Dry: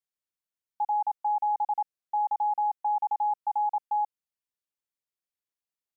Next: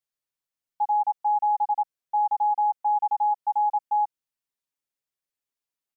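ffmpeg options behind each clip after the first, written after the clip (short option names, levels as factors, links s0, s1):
-af "aecho=1:1:7.3:0.65"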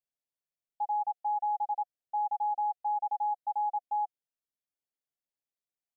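-af "firequalizer=gain_entry='entry(400,0);entry(720,4);entry(1100,-14);entry(1600,-5)':delay=0.05:min_phase=1,volume=0.501"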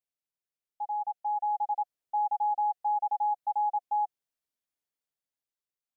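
-af "dynaudnorm=f=280:g=9:m=2,volume=0.668"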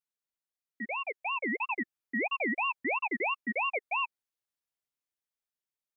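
-af "aeval=exprs='val(0)*sin(2*PI*1500*n/s+1500*0.3/3*sin(2*PI*3*n/s))':c=same"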